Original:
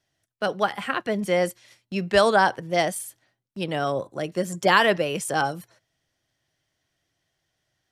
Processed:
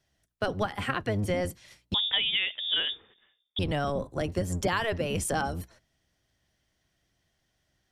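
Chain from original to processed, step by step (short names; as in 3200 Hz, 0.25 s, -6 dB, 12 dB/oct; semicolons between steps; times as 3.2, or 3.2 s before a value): octaver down 1 oct, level +3 dB; compressor 6:1, threshold -25 dBFS, peak gain reduction 12.5 dB; 1.94–3.59 inverted band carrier 3600 Hz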